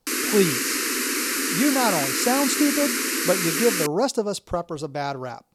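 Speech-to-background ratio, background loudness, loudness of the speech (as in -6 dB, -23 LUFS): -1.5 dB, -23.0 LUFS, -24.5 LUFS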